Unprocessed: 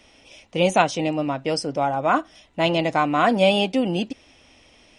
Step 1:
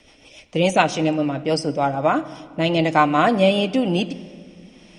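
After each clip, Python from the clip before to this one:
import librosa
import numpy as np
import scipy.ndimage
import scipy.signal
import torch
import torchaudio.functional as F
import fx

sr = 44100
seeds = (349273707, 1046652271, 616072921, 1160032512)

y = fx.rotary_switch(x, sr, hz=7.0, then_hz=1.0, switch_at_s=1.62)
y = fx.room_shoebox(y, sr, seeds[0], volume_m3=3700.0, walls='mixed', distance_m=0.47)
y = y * 10.0 ** (4.0 / 20.0)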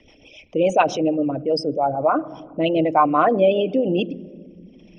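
y = fx.envelope_sharpen(x, sr, power=2.0)
y = scipy.signal.sosfilt(scipy.signal.butter(2, 7300.0, 'lowpass', fs=sr, output='sos'), y)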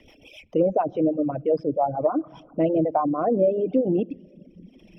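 y = scipy.signal.medfilt(x, 5)
y = fx.env_lowpass_down(y, sr, base_hz=550.0, full_db=-14.5)
y = fx.dereverb_blind(y, sr, rt60_s=0.94)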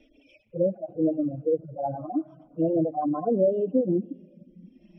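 y = fx.hpss_only(x, sr, part='harmonic')
y = fx.air_absorb(y, sr, metres=64.0)
y = fx.wow_flutter(y, sr, seeds[1], rate_hz=2.1, depth_cents=20.0)
y = y * 10.0 ** (-1.5 / 20.0)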